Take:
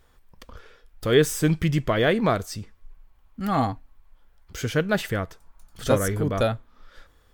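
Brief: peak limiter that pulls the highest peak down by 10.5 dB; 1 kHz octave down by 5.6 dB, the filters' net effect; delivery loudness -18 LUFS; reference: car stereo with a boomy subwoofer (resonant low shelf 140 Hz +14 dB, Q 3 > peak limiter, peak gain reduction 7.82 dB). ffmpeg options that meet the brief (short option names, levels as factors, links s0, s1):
-af "equalizer=f=1000:t=o:g=-7.5,alimiter=limit=0.126:level=0:latency=1,lowshelf=f=140:t=q:w=3:g=14,volume=1.58,alimiter=limit=0.447:level=0:latency=1"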